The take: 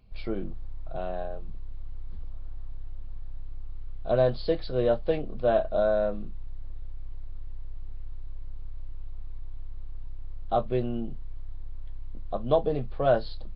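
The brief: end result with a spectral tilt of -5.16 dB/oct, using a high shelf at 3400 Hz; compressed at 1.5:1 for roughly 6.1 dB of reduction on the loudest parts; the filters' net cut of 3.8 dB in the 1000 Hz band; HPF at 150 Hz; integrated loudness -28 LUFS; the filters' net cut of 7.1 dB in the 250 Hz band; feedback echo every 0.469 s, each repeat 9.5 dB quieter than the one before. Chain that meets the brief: HPF 150 Hz; bell 250 Hz -9 dB; bell 1000 Hz -5 dB; high shelf 3400 Hz -3.5 dB; compressor 1.5:1, threshold -38 dBFS; feedback echo 0.469 s, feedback 33%, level -9.5 dB; gain +9 dB

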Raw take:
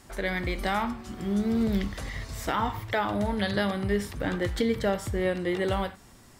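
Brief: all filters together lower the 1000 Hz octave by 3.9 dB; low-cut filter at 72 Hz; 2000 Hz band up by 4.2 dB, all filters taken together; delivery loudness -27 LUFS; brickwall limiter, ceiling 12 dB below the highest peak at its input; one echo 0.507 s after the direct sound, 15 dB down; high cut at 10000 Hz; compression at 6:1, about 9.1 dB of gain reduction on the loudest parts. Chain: HPF 72 Hz; LPF 10000 Hz; bell 1000 Hz -7 dB; bell 2000 Hz +7 dB; compressor 6:1, threshold -32 dBFS; limiter -28.5 dBFS; echo 0.507 s -15 dB; gain +11 dB

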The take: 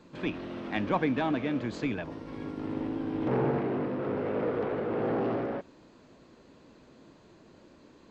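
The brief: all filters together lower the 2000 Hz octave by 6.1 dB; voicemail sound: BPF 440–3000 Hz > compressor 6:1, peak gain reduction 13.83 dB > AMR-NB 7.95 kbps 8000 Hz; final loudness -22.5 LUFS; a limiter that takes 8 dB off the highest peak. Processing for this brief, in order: bell 2000 Hz -7 dB; limiter -24 dBFS; BPF 440–3000 Hz; compressor 6:1, threshold -46 dBFS; gain +27 dB; AMR-NB 7.95 kbps 8000 Hz

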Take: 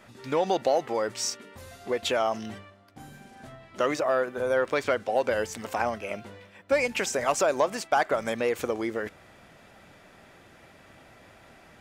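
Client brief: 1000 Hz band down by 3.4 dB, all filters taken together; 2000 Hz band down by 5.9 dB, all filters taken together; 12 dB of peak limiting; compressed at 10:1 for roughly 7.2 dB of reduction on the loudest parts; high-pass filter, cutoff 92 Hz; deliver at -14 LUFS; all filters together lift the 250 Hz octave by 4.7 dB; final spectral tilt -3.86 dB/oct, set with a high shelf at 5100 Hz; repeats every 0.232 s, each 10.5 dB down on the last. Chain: HPF 92 Hz; bell 250 Hz +6.5 dB; bell 1000 Hz -4 dB; bell 2000 Hz -7 dB; high shelf 5100 Hz +3.5 dB; compressor 10:1, threshold -27 dBFS; limiter -28 dBFS; feedback echo 0.232 s, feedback 30%, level -10.5 dB; gain +24 dB

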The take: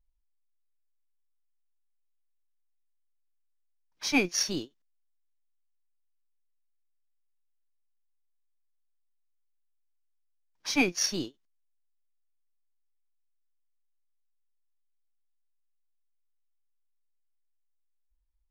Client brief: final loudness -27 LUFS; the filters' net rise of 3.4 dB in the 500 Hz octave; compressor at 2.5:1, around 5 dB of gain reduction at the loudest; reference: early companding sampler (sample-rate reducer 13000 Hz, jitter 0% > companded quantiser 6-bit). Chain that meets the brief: bell 500 Hz +4.5 dB; compressor 2.5:1, threshold -25 dBFS; sample-rate reducer 13000 Hz, jitter 0%; companded quantiser 6-bit; gain +3.5 dB

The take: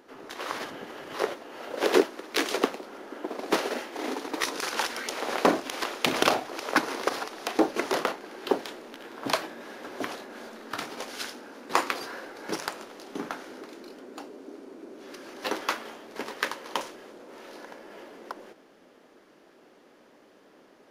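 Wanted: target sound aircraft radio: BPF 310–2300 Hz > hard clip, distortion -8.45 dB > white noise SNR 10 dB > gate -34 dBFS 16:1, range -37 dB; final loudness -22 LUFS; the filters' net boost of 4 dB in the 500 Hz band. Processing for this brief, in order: BPF 310–2300 Hz; bell 500 Hz +6 dB; hard clip -18 dBFS; white noise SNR 10 dB; gate -34 dBFS 16:1, range -37 dB; gain +9 dB

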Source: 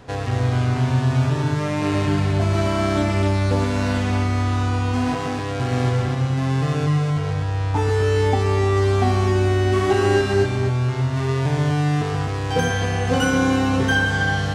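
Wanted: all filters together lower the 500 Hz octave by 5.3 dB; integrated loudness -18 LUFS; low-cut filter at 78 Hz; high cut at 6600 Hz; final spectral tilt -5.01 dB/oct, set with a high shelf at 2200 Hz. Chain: HPF 78 Hz; LPF 6600 Hz; bell 500 Hz -7.5 dB; high shelf 2200 Hz +4.5 dB; gain +4 dB

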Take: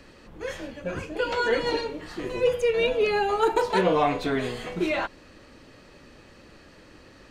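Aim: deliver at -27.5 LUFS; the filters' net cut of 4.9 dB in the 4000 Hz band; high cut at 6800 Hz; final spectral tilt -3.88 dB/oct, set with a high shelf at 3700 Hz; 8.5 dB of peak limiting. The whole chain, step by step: LPF 6800 Hz; high shelf 3700 Hz -3 dB; bell 4000 Hz -4.5 dB; gain +1 dB; limiter -17.5 dBFS

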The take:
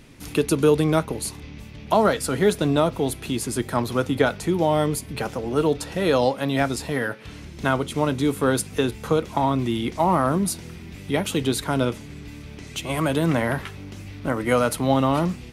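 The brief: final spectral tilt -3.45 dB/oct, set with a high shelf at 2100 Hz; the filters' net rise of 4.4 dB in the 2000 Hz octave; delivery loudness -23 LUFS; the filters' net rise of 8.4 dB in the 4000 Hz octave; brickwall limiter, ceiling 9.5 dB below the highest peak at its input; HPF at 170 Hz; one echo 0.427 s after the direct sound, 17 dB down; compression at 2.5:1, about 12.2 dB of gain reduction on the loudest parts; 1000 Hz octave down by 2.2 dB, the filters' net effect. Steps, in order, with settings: HPF 170 Hz; bell 1000 Hz -5.5 dB; bell 2000 Hz +3.5 dB; high shelf 2100 Hz +6 dB; bell 4000 Hz +4 dB; compressor 2.5:1, threshold -32 dBFS; limiter -21.5 dBFS; echo 0.427 s -17 dB; gain +10 dB

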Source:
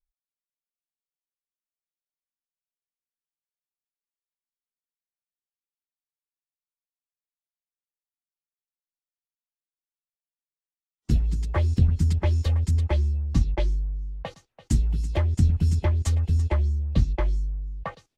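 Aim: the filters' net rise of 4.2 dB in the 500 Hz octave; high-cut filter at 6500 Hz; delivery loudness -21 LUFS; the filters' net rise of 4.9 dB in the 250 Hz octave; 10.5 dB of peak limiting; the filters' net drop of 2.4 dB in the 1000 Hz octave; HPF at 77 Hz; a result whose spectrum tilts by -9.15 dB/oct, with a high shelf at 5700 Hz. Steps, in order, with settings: HPF 77 Hz; LPF 6500 Hz; bell 250 Hz +6 dB; bell 500 Hz +5.5 dB; bell 1000 Hz -5 dB; high shelf 5700 Hz -8 dB; gain +8.5 dB; limiter -11 dBFS

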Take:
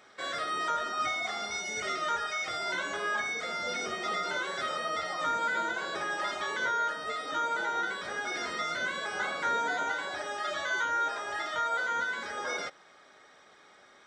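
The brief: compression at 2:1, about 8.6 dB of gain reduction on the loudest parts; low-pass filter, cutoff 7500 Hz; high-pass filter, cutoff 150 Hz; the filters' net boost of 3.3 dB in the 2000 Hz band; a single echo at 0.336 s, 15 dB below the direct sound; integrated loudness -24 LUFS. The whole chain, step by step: HPF 150 Hz; LPF 7500 Hz; bell 2000 Hz +4.5 dB; compressor 2:1, threshold -41 dBFS; echo 0.336 s -15 dB; gain +12.5 dB

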